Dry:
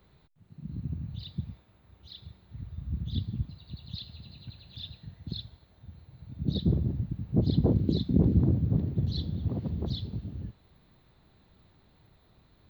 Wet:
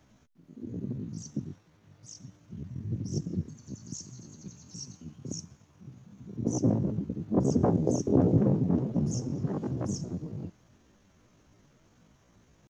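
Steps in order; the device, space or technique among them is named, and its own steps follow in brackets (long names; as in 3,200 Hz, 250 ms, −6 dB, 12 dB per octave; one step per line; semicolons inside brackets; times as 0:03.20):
chipmunk voice (pitch shifter +8 semitones)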